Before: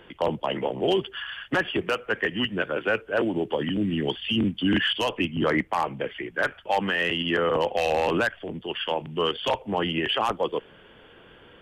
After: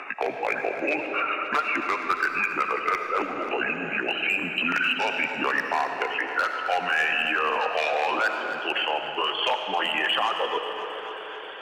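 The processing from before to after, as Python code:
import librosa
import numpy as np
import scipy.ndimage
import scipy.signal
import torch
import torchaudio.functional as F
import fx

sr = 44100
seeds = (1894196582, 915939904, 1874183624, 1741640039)

p1 = fx.pitch_glide(x, sr, semitones=-4.0, runs='ending unshifted')
p2 = scipy.signal.sosfilt(scipy.signal.butter(2, 900.0, 'highpass', fs=sr, output='sos'), p1)
p3 = fx.dereverb_blind(p2, sr, rt60_s=1.3)
p4 = scipy.signal.sosfilt(scipy.signal.butter(2, 6500.0, 'lowpass', fs=sr, output='sos'), p3)
p5 = fx.high_shelf(p4, sr, hz=2100.0, db=-5.5)
p6 = fx.over_compress(p5, sr, threshold_db=-40.0, ratio=-1.0)
p7 = p5 + (p6 * librosa.db_to_amplitude(-1.5))
p8 = np.clip(10.0 ** (22.0 / 20.0) * p7, -1.0, 1.0) / 10.0 ** (22.0 / 20.0)
p9 = p8 + fx.echo_feedback(p8, sr, ms=269, feedback_pct=55, wet_db=-14, dry=0)
p10 = fx.rev_freeverb(p9, sr, rt60_s=2.7, hf_ratio=0.6, predelay_ms=35, drr_db=5.5)
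p11 = fx.band_squash(p10, sr, depth_pct=40)
y = p11 * librosa.db_to_amplitude(5.5)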